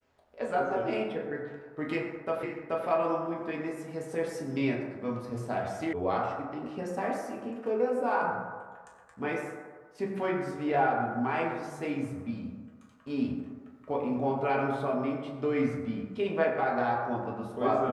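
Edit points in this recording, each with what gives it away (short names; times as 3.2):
2.43 repeat of the last 0.43 s
5.93 sound cut off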